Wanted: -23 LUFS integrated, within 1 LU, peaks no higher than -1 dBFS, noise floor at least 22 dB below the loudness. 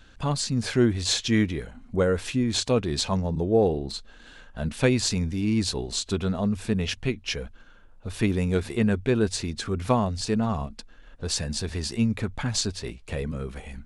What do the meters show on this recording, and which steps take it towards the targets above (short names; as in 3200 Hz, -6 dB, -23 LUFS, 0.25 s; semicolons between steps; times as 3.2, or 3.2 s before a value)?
dropouts 1; longest dropout 2.6 ms; loudness -26.0 LUFS; peak -6.5 dBFS; loudness target -23.0 LUFS
-> interpolate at 3.91, 2.6 ms; gain +3 dB